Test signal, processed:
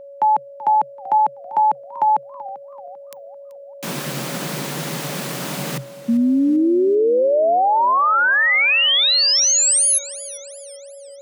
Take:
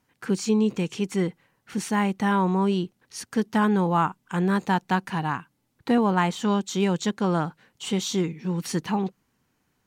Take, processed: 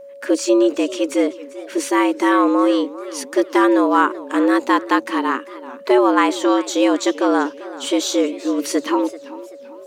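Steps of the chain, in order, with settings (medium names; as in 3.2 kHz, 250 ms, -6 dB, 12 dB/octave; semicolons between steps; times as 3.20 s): frequency shift +130 Hz; whistle 560 Hz -43 dBFS; modulated delay 388 ms, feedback 43%, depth 163 cents, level -17 dB; trim +7 dB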